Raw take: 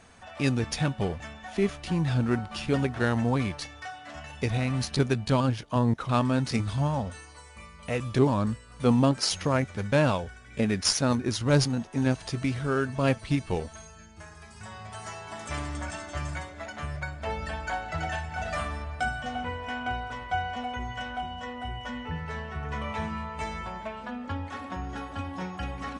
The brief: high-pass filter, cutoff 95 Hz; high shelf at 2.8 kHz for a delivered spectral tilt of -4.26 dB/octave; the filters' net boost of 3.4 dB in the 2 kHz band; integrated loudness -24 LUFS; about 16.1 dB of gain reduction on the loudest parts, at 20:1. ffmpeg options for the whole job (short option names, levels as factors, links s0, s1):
-af "highpass=95,equalizer=f=2000:t=o:g=7.5,highshelf=f=2800:g=-7.5,acompressor=threshold=0.0224:ratio=20,volume=5.31"